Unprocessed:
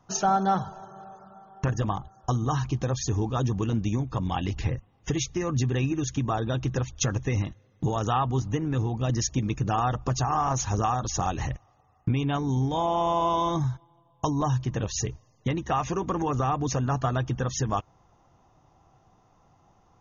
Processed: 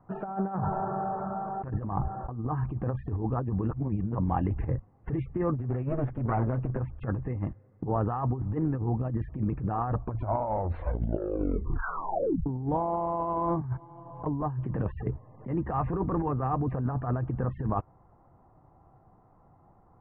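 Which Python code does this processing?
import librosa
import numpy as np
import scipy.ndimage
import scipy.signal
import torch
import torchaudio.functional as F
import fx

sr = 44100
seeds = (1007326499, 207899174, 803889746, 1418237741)

y = fx.env_flatten(x, sr, amount_pct=50, at=(0.57, 2.44), fade=0.02)
y = fx.lower_of_two(y, sr, delay_ms=8.0, at=(5.53, 6.79), fade=0.02)
y = fx.band_squash(y, sr, depth_pct=100, at=(13.61, 16.56))
y = fx.edit(y, sr, fx.reverse_span(start_s=3.7, length_s=0.45),
    fx.tape_stop(start_s=9.86, length_s=2.6), tone=tone)
y = scipy.signal.sosfilt(scipy.signal.bessel(8, 1100.0, 'lowpass', norm='mag', fs=sr, output='sos'), y)
y = fx.over_compress(y, sr, threshold_db=-28.0, ratio=-0.5)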